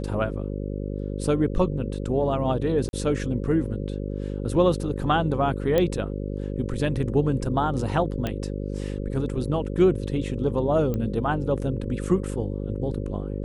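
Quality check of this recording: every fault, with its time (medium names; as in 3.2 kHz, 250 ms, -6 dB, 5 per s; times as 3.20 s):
buzz 50 Hz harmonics 11 -30 dBFS
2.89–2.93 s: dropout 41 ms
5.78 s: pop -10 dBFS
8.27 s: pop -14 dBFS
10.94 s: pop -17 dBFS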